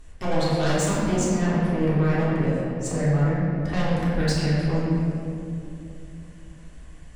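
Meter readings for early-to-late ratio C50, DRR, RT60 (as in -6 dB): -2.5 dB, -9.0 dB, 2.8 s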